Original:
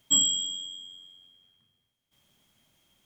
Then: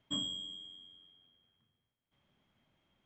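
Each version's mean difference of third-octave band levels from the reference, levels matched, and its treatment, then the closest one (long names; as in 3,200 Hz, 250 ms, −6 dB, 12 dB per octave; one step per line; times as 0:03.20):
5.5 dB: low-pass filter 2,200 Hz 12 dB per octave
level −3.5 dB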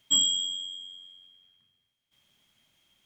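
1.5 dB: parametric band 2,700 Hz +7 dB 2.2 octaves
level −5 dB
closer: second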